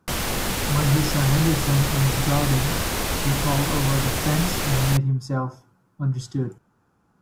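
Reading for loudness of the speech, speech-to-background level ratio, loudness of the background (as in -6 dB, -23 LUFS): -24.5 LUFS, 0.5 dB, -25.0 LUFS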